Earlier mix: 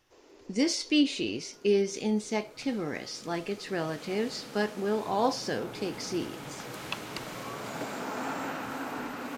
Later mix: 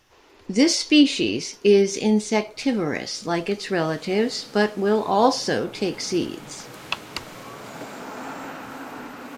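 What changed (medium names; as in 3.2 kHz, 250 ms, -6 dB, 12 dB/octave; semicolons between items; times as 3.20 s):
speech +9.0 dB; first sound: add high-order bell 1.8 kHz +8 dB 2.7 oct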